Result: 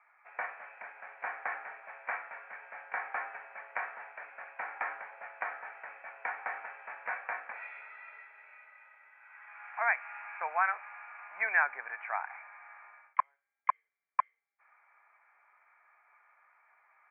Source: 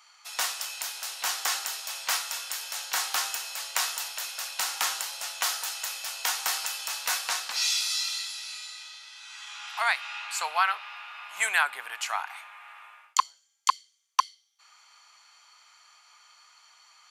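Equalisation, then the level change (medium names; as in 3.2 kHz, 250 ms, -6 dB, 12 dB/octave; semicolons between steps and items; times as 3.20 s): rippled Chebyshev low-pass 2.4 kHz, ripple 6 dB; 0.0 dB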